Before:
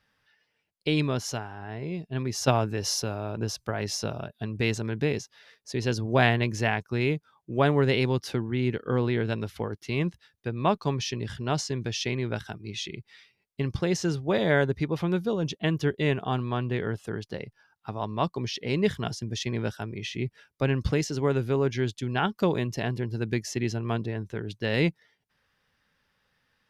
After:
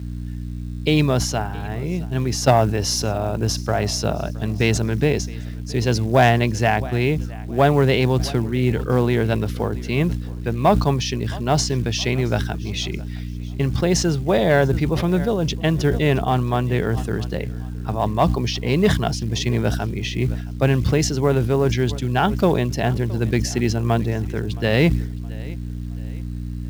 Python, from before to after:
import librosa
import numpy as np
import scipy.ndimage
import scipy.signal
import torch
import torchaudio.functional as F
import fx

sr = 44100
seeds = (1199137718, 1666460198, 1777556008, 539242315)

p1 = fx.dynamic_eq(x, sr, hz=700.0, q=2.3, threshold_db=-41.0, ratio=4.0, max_db=6)
p2 = p1 + fx.echo_feedback(p1, sr, ms=668, feedback_pct=38, wet_db=-22.0, dry=0)
p3 = fx.add_hum(p2, sr, base_hz=60, snr_db=10)
p4 = fx.rider(p3, sr, range_db=4, speed_s=2.0)
p5 = p3 + F.gain(torch.from_numpy(p4), -1.0).numpy()
p6 = 10.0 ** (-5.5 / 20.0) * np.tanh(p5 / 10.0 ** (-5.5 / 20.0))
p7 = fx.low_shelf(p6, sr, hz=100.0, db=7.0)
p8 = fx.quant_float(p7, sr, bits=4)
p9 = scipy.signal.sosfilt(scipy.signal.butter(2, 74.0, 'highpass', fs=sr, output='sos'), p8)
y = fx.sustainer(p9, sr, db_per_s=70.0)